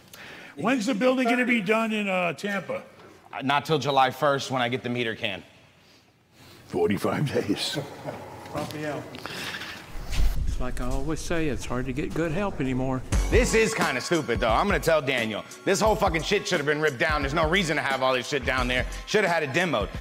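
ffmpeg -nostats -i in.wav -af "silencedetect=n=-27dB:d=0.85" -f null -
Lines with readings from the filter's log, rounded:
silence_start: 5.38
silence_end: 6.74 | silence_duration: 1.36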